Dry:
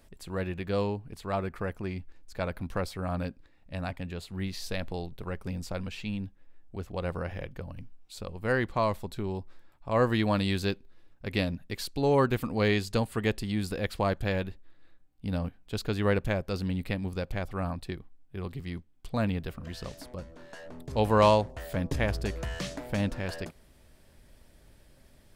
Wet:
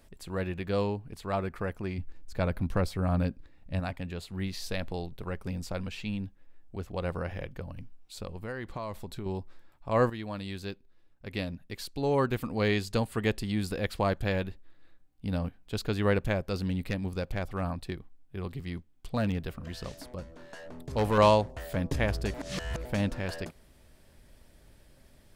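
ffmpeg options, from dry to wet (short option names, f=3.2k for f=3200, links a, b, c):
-filter_complex "[0:a]asettb=1/sr,asplit=3[a][b][c];[a]atrim=end=1.984[d];[b]atrim=start=1.98:end=3.8,asetpts=PTS-STARTPTS,afade=t=in:d=0.004:c=qsin,afade=t=out:st=1.816:d=0.004:c=qsin,lowshelf=f=320:g=7[e];[c]atrim=start=3.796[f];[d][e]acrossfade=d=0.004:c1=hsin:c2=qsin[g];[g][f]acrossfade=d=0.004:c1=qsin:c2=hsin,asettb=1/sr,asplit=3[h][i][j];[h]atrim=end=8.264[k];[i]atrim=start=8.26:end=9.26,asetpts=PTS-STARTPTS,afade=t=in:d=0.004:c=qsin,afade=t=out:st=0.996:d=0.004:c=qsin,acompressor=threshold=-33dB:ratio=6:attack=3.2:release=140:knee=1:detection=peak[l];[j]atrim=start=9.256[m];[k][l]acrossfade=d=0.004:c1=hsin:c2=qsin[n];[n][m]acrossfade=d=0.004:c1=qsin:c2=hsin,asettb=1/sr,asplit=3[o][p][q];[o]atrim=end=16.534[r];[p]atrim=start=16.53:end=21.18,asetpts=PTS-STARTPTS,afade=t=in:d=0.004:c=qsin,afade=t=out:st=4.646:d=0.004:c=qsin,asoftclip=type=hard:threshold=-21.5dB[s];[q]atrim=start=21.176[t];[r][s]acrossfade=d=0.004:c1=hsin:c2=qsin[u];[u][t]acrossfade=d=0.004:c1=qsin:c2=hsin,asplit=4[v][w][x][y];[v]atrim=end=10.1,asetpts=PTS-STARTPTS,afade=t=out:st=10.096:d=0.004:c=hsin:silence=0.237137[z];[w]atrim=start=10.1:end=22.342,asetpts=PTS-STARTPTS,afade=t=in:d=3.25:silence=0.237137[aa];[x]atrim=start=22.338:end=22.852,asetpts=PTS-STARTPTS,areverse[ab];[y]atrim=start=22.848[ac];[z][aa]concat=n=2:v=0:a=1[ad];[ad][ab]acrossfade=d=0.004:c1=hsin:c2=hsin[ae];[ae][ac]acrossfade=d=0.004:c1=hsin:c2=hsin"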